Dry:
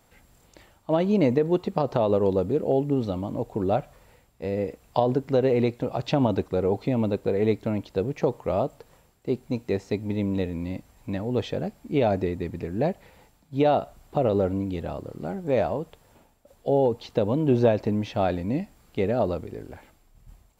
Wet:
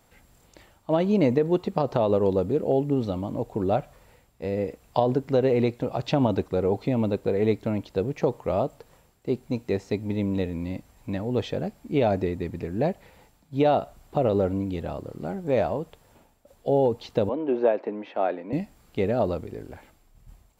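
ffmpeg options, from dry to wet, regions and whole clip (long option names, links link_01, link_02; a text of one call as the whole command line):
ffmpeg -i in.wav -filter_complex "[0:a]asettb=1/sr,asplit=3[link_01][link_02][link_03];[link_01]atrim=end=17.294[link_04];[link_02]atrim=start=17.29:end=18.53,asetpts=PTS-STARTPTS,afade=type=in:duration=0.004:curve=qsin,afade=type=out:start_time=1.236:duration=0.004:curve=qsin,highpass=200,acrossover=split=260 2700:gain=0.0631 1 0.0708[link_05][link_06][link_07];[link_05][link_06][link_07]amix=inputs=3:normalize=0[link_08];[link_03]atrim=start=18.526[link_09];[link_04][link_08]acrossfade=duration=0.004:curve1=hsin:curve2=qsin[link_10];[link_10][link_09]acrossfade=duration=0.004:curve1=qsin:curve2=hsin" out.wav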